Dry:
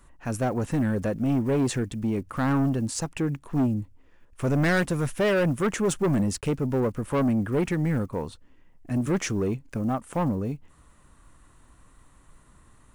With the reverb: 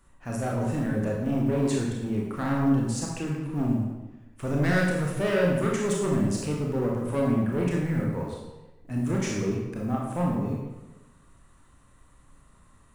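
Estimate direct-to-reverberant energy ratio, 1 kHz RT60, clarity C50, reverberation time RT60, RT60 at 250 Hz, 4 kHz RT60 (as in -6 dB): -2.5 dB, 1.1 s, 1.5 dB, 1.1 s, 1.2 s, 0.85 s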